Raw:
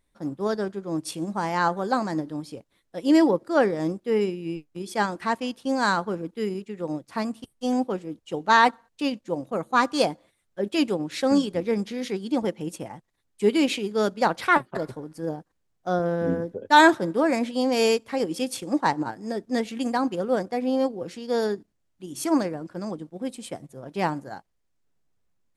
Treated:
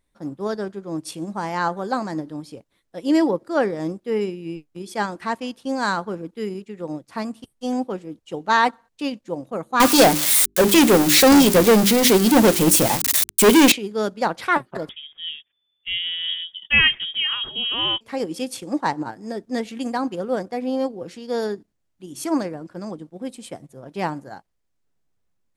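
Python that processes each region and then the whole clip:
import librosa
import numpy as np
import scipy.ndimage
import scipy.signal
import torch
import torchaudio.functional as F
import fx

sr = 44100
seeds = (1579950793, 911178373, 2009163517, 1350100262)

y = fx.chain(x, sr, fx.crossing_spikes(level_db=-21.5),
    fx.leveller(passes=5),
    fx.hum_notches(base_hz=50, count=8), at=(9.8, 13.72))
y = fx.chain(y, sr, fx.freq_invert(carrier_hz=3500),
    fx.tilt_shelf(db=3.5, hz=1400.0), at=(14.89, 18.01))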